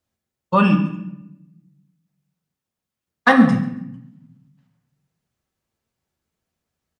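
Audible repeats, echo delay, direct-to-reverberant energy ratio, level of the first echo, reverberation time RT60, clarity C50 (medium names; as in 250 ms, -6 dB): 1, 138 ms, 4.0 dB, -18.0 dB, 0.80 s, 9.5 dB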